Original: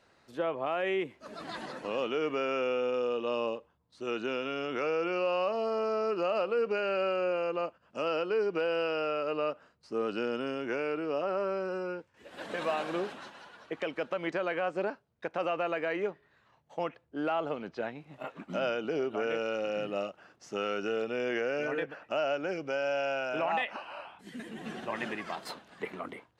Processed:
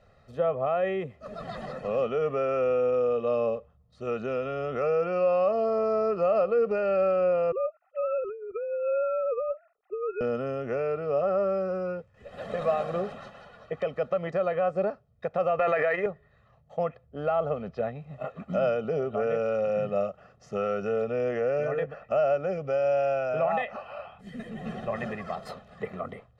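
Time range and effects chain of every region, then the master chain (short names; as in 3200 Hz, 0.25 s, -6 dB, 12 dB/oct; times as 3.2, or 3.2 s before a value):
7.52–10.21 sine-wave speech + high shelf 2100 Hz -7.5 dB + negative-ratio compressor -36 dBFS
15.59–16.06 transient shaper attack +4 dB, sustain +12 dB + Bessel high-pass 280 Hz + bell 1900 Hz +9.5 dB 0.93 oct
whole clip: tilt -3 dB/oct; comb 1.6 ms, depth 86%; dynamic EQ 2800 Hz, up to -4 dB, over -46 dBFS, Q 1.3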